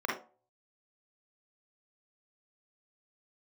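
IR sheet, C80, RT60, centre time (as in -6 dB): 12.0 dB, 0.40 s, 38 ms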